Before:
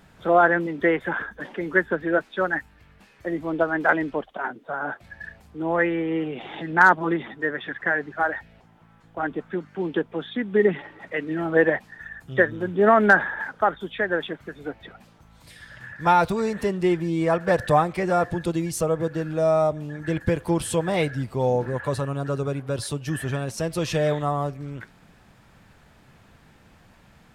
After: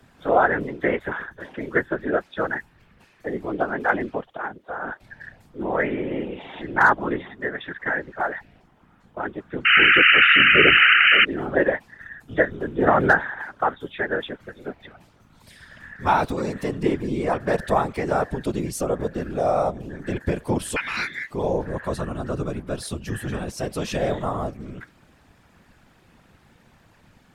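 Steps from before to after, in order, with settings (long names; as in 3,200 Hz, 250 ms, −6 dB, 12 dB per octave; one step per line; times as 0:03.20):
0:09.65–0:11.25: sound drawn into the spectrogram noise 1,300–3,000 Hz −13 dBFS
0:20.76–0:21.31: ring modulation 1,900 Hz
random phases in short frames
level −1.5 dB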